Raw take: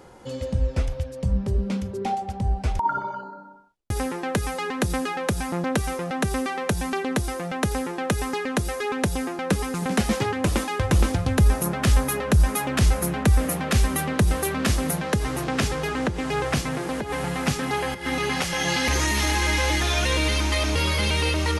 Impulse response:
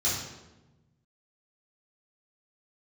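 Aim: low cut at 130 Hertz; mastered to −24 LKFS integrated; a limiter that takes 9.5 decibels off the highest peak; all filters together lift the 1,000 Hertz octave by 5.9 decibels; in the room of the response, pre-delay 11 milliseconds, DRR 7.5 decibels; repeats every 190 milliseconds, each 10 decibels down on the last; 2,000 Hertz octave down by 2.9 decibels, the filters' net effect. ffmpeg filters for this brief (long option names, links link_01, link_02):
-filter_complex "[0:a]highpass=130,equalizer=frequency=1000:width_type=o:gain=9,equalizer=frequency=2000:width_type=o:gain=-6.5,alimiter=limit=-15dB:level=0:latency=1,aecho=1:1:190|380|570|760:0.316|0.101|0.0324|0.0104,asplit=2[link_01][link_02];[1:a]atrim=start_sample=2205,adelay=11[link_03];[link_02][link_03]afir=irnorm=-1:irlink=0,volume=-17dB[link_04];[link_01][link_04]amix=inputs=2:normalize=0,volume=0.5dB"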